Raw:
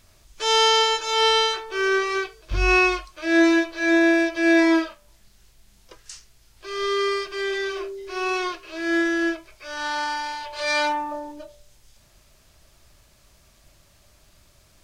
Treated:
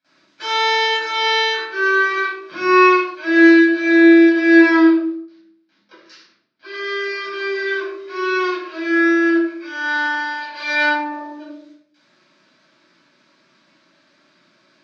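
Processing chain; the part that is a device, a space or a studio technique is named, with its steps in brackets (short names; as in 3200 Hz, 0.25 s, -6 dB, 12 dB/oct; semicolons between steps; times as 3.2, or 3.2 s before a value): 4.83–6.74 steep low-pass 5800 Hz 36 dB/oct; kitchen radio (speaker cabinet 170–4600 Hz, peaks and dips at 300 Hz +5 dB, 450 Hz -6 dB, 750 Hz -10 dB, 1600 Hz +4 dB, 3000 Hz -5 dB); gate with hold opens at -53 dBFS; HPF 200 Hz 24 dB/oct; shoebox room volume 1000 m³, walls furnished, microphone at 8 m; gain -3.5 dB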